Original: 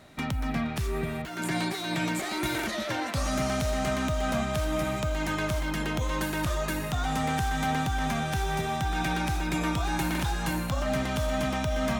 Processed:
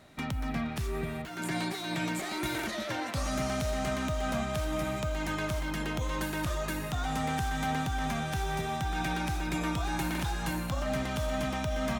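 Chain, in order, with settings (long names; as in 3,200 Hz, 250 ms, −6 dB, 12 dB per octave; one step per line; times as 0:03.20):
single-tap delay 177 ms −21 dB
level −3.5 dB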